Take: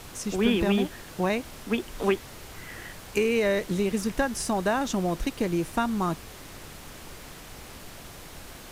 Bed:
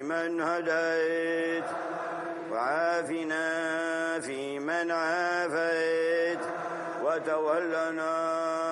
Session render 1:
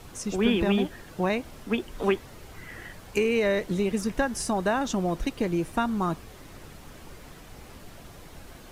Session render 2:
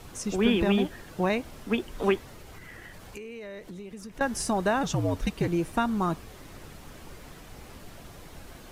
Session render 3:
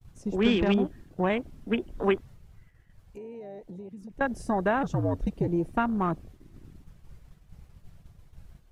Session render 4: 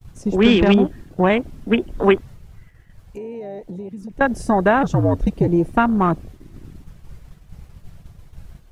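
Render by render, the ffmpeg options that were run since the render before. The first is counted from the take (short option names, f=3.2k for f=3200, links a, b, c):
-af "afftdn=nr=7:nf=-45"
-filter_complex "[0:a]asettb=1/sr,asplit=3[a][b][c];[a]atrim=end=2.204[d];[b]atrim=start=2.2:end=4.21,asetpts=PTS-STARTPTS,afade=t=in:d=0.004:c=qsin,afade=t=out:st=2.006:d=0.004:c=qsin,acompressor=threshold=-41dB:ratio=4:attack=3.2:release=140:knee=1:detection=peak[e];[c]atrim=start=4.206[f];[d][e]acrossfade=d=0.004:c1=hsin:c2=qsin[g];[g][f]acrossfade=d=0.004:c1=qsin:c2=hsin,asettb=1/sr,asplit=3[h][i][j];[h]atrim=end=4.834[k];[i]atrim=start=4.83:end=5.48,asetpts=PTS-STARTPTS,afade=t=in:d=0.004:c=qsin,afade=t=out:st=0.646:d=0.004:c=qsin,afreqshift=-69[l];[j]atrim=start=5.476[m];[k][l]acrossfade=d=0.004:c1=hsin:c2=qsin[n];[n][m]acrossfade=d=0.004:c1=qsin:c2=hsin"
-af "afwtdn=0.0158,agate=range=-33dB:threshold=-44dB:ratio=3:detection=peak"
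-af "volume=10dB,alimiter=limit=-2dB:level=0:latency=1"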